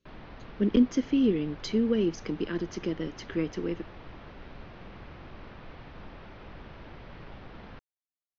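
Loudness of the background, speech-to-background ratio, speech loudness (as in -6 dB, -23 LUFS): -47.5 LUFS, 19.0 dB, -28.5 LUFS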